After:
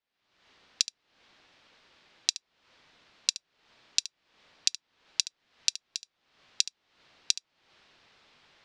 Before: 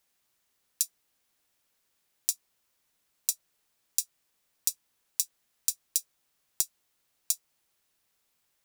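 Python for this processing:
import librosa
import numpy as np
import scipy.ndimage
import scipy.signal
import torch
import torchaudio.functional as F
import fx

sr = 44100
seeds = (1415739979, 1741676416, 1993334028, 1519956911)

p1 = fx.recorder_agc(x, sr, target_db=-7.5, rise_db_per_s=63.0, max_gain_db=30)
p2 = scipy.signal.sosfilt(scipy.signal.butter(4, 4400.0, 'lowpass', fs=sr, output='sos'), p1)
p3 = fx.low_shelf(p2, sr, hz=120.0, db=-6.0)
p4 = p3 + fx.echo_single(p3, sr, ms=72, db=-14.5, dry=0)
y = p4 * librosa.db_to_amplitude(-10.5)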